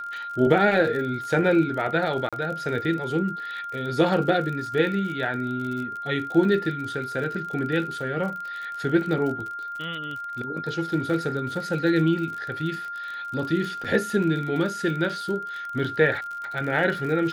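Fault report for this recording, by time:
crackle 43 per s -32 dBFS
whine 1.4 kHz -31 dBFS
2.29–2.33 s: dropout 36 ms
13.84–13.85 s: dropout 6.5 ms

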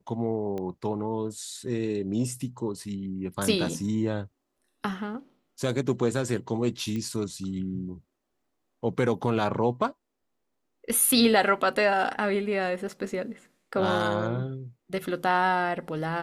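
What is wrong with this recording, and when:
0.58 s: pop -23 dBFS
6.96 s: pop -22 dBFS

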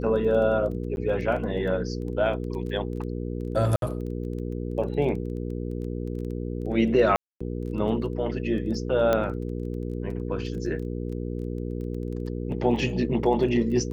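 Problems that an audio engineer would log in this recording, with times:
crackle 13 per s -35 dBFS
hum 60 Hz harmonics 8 -31 dBFS
0.96–0.97 s: dropout 11 ms
3.76–3.82 s: dropout 62 ms
7.16–7.41 s: dropout 245 ms
9.13 s: pop -11 dBFS

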